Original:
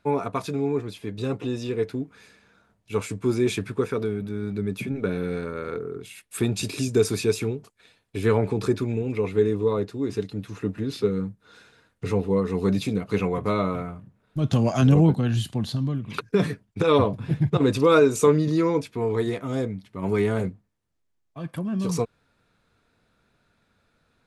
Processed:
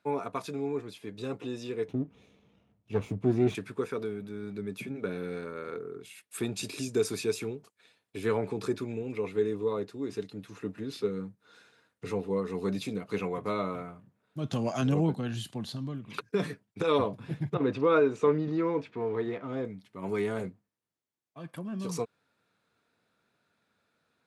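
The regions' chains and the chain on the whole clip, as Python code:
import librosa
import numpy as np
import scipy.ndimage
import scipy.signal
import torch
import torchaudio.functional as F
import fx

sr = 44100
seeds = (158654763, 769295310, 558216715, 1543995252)

y = fx.chain(x, sr, fx.lower_of_two(delay_ms=0.31),
    fx.riaa(side='playback'), at=(1.88, 3.55))
y = fx.chain(y, sr, fx.law_mismatch(coded='mu'),
    fx.lowpass(hz=2500.0, slope=12), at=(17.54, 19.65))
y = scipy.signal.sosfilt(scipy.signal.butter(2, 90.0, 'highpass', fs=sr, output='sos'), y)
y = fx.low_shelf(y, sr, hz=130.0, db=-10.5)
y = F.gain(torch.from_numpy(y), -6.0).numpy()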